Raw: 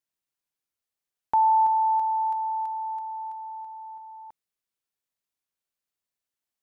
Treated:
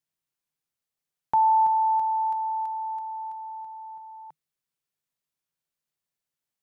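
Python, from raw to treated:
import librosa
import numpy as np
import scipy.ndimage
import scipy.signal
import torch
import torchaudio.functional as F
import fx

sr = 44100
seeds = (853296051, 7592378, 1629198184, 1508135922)

y = fx.peak_eq(x, sr, hz=150.0, db=10.5, octaves=0.39)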